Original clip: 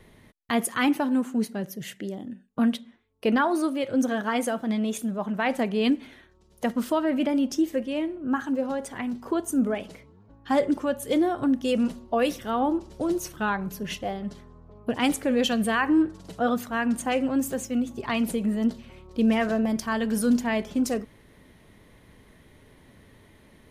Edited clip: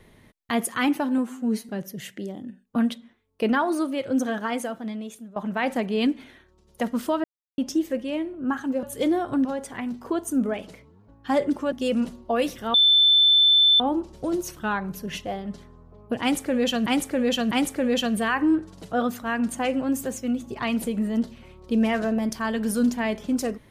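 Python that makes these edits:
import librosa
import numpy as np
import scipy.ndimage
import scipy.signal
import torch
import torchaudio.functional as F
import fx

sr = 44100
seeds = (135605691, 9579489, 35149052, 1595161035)

y = fx.edit(x, sr, fx.stretch_span(start_s=1.18, length_s=0.34, factor=1.5),
    fx.fade_out_to(start_s=4.11, length_s=1.08, floor_db=-16.5),
    fx.silence(start_s=7.07, length_s=0.34),
    fx.move(start_s=10.93, length_s=0.62, to_s=8.66),
    fx.insert_tone(at_s=12.57, length_s=1.06, hz=3530.0, db=-13.5),
    fx.repeat(start_s=14.98, length_s=0.65, count=3), tone=tone)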